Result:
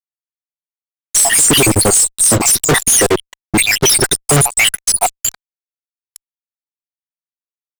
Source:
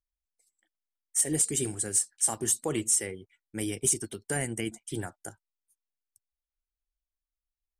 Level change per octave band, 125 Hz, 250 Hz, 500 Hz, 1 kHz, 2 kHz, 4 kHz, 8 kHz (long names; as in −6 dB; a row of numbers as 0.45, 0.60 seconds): +18.5, +15.5, +18.0, +23.0, +24.0, +25.5, +16.5 decibels